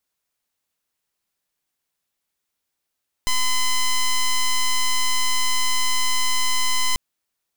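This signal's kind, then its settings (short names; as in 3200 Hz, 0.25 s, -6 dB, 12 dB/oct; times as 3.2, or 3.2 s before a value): pulse 1020 Hz, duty 8% -18.5 dBFS 3.69 s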